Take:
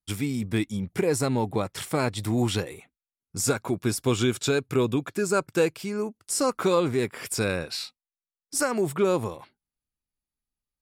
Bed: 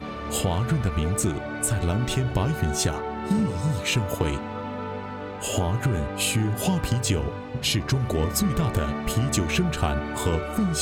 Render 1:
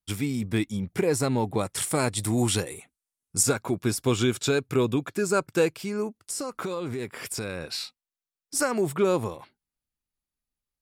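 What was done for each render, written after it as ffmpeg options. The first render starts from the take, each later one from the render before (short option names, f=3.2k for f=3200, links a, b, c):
-filter_complex "[0:a]asettb=1/sr,asplit=3[a][b][c];[a]atrim=end=1.594[d];[b]atrim=start=1.59:end=3.43,asetpts=PTS-STARTPTS,afade=t=in:d=0.004:c=qsin,afade=t=out:st=1.836:d=0.004:c=qsin,equalizer=f=9.2k:w=1.1:g=11.5[e];[c]atrim=start=3.426[f];[d][e]acrossfade=d=0.004:c1=hsin:c2=qsin[g];[g][f]acrossfade=d=0.004:c1=qsin:c2=hsin,asettb=1/sr,asplit=3[h][i][j];[h]atrim=end=6.224[k];[i]atrim=start=6.22:end=7.65,asetpts=PTS-STARTPTS,afade=t=in:d=0.004:c=qsin,afade=t=out:st=1.426:d=0.004:c=qsin,acompressor=threshold=-28dB:ratio=6:attack=3.2:release=140:knee=1:detection=peak[l];[j]atrim=start=7.646[m];[k][l]acrossfade=d=0.004:c1=hsin:c2=qsin[n];[n][m]acrossfade=d=0.004:c1=qsin:c2=hsin"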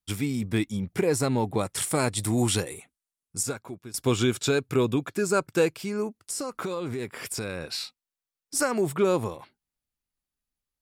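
-filter_complex "[0:a]asplit=2[a][b];[a]atrim=end=3.94,asetpts=PTS-STARTPTS,afade=t=out:st=2.73:d=1.21:silence=0.0944061[c];[b]atrim=start=3.94,asetpts=PTS-STARTPTS,afade=t=in:d=0.004:c=hsin:silence=0.0944061[d];[c][d]concat=n=2:v=0:a=1"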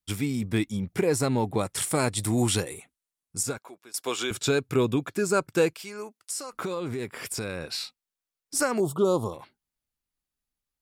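-filter_complex "[0:a]asettb=1/sr,asplit=3[a][b][c];[a]atrim=end=3.584[d];[b]atrim=start=3.58:end=4.31,asetpts=PTS-STARTPTS,afade=t=in:d=0.004:c=qsin,afade=t=out:st=0.726:d=0.004:c=qsin,highpass=530[e];[c]atrim=start=4.306[f];[d][e]acrossfade=d=0.004:c1=hsin:c2=qsin[g];[g][f]acrossfade=d=0.004:c1=qsin:c2=hsin,asettb=1/sr,asplit=3[h][i][j];[h]atrim=end=5.734[k];[i]atrim=start=5.73:end=6.53,asetpts=PTS-STARTPTS,afade=t=in:d=0.004:c=qsin,afade=t=out:st=0.796:d=0.004:c=qsin,highpass=f=990:p=1[l];[j]atrim=start=6.526[m];[k][l]acrossfade=d=0.004:c1=hsin:c2=qsin[n];[n][m]acrossfade=d=0.004:c1=qsin:c2=hsin,asettb=1/sr,asplit=3[o][p][q];[o]atrim=end=8.804[r];[p]atrim=start=8.8:end=9.33,asetpts=PTS-STARTPTS,afade=t=in:d=0.004:c=qsin,afade=t=out:st=0.526:d=0.004:c=qsin,asuperstop=centerf=2000:order=8:qfactor=1.1[s];[q]atrim=start=9.326[t];[r][s]acrossfade=d=0.004:c1=hsin:c2=qsin[u];[u][t]acrossfade=d=0.004:c1=qsin:c2=hsin"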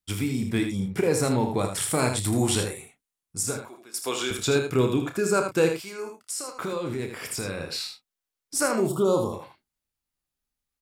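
-filter_complex "[0:a]asplit=2[a][b];[b]adelay=31,volume=-9dB[c];[a][c]amix=inputs=2:normalize=0,asplit=2[d][e];[e]aecho=0:1:57|79:0.168|0.447[f];[d][f]amix=inputs=2:normalize=0"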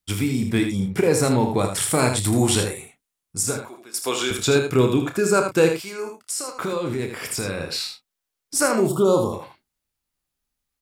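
-af "volume=4.5dB"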